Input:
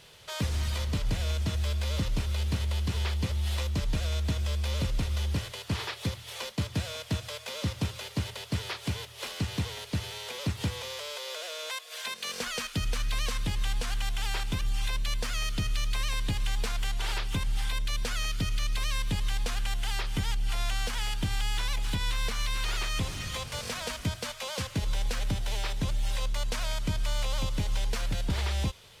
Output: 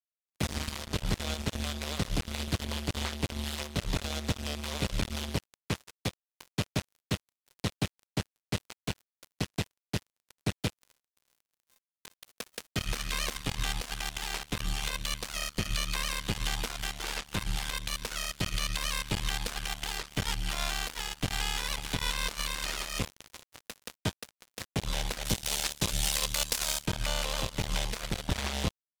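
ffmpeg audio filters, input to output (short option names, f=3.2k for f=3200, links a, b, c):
-filter_complex "[0:a]acrusher=bits=3:mix=0:aa=0.5,asettb=1/sr,asplit=3[a][b][c];[a]atrim=end=25.254[d];[b]atrim=start=25.25:end=26.86,asetpts=PTS-STARTPTS,afade=t=in:d=0.004:c=qsin,afade=t=out:st=1.606:d=0.004:c=qsin,highshelf=f=3.6k:g=12[e];[c]atrim=start=26.856[f];[d][e]acrossfade=d=0.004:c1=hsin:c2=qsin[g];[g][f]acrossfade=d=0.004:c1=qsin:c2=hsin"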